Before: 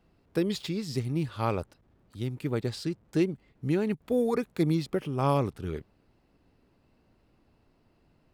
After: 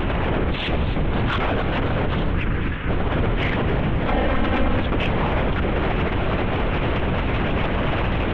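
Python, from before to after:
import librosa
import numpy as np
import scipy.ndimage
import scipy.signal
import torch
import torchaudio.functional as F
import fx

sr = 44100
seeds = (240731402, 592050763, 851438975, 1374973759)

y = np.sign(x) * np.sqrt(np.mean(np.square(x)))
y = scipy.signal.sosfilt(scipy.signal.butter(2, 47.0, 'highpass', fs=sr, output='sos'), y)
y = fx.leveller(y, sr, passes=5)
y = scipy.signal.sosfilt(scipy.signal.butter(4, 3100.0, 'lowpass', fs=sr, output='sos'), y)
y = fx.lpc_vocoder(y, sr, seeds[0], excitation='whisper', order=8)
y = fx.fixed_phaser(y, sr, hz=1700.0, stages=4, at=(2.34, 2.88), fade=0.02)
y = 10.0 ** (-17.0 / 20.0) * np.tanh(y / 10.0 ** (-17.0 / 20.0))
y = fx.comb(y, sr, ms=3.8, depth=0.65, at=(4.08, 4.77))
y = fx.echo_warbled(y, sr, ms=265, feedback_pct=75, rate_hz=2.8, cents=110, wet_db=-13.0)
y = y * librosa.db_to_amplitude(5.5)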